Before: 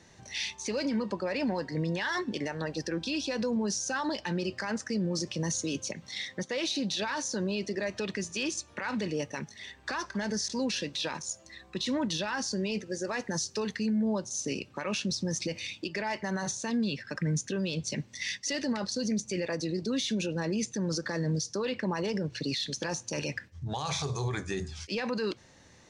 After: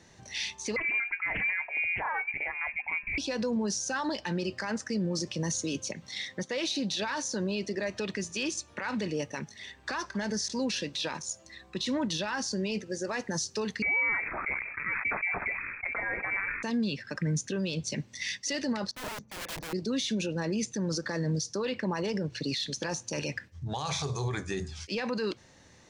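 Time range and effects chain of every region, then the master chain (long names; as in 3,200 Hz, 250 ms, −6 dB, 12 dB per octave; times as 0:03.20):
0:00.76–0:03.18: voice inversion scrambler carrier 2,600 Hz + highs frequency-modulated by the lows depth 0.26 ms
0:13.82–0:16.63: sample-and-hold swept by an LFO 17× 1.2 Hz + voice inversion scrambler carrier 2,500 Hz + level that may fall only so fast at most 52 dB per second
0:18.91–0:19.73: Chebyshev low-pass filter 1,400 Hz + wrap-around overflow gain 33 dB + multiband upward and downward expander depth 100%
whole clip: no processing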